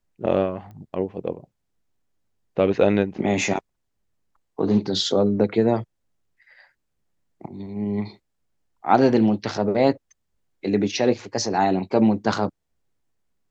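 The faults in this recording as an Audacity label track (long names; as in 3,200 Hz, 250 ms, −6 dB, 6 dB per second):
0.710000	0.710000	click −32 dBFS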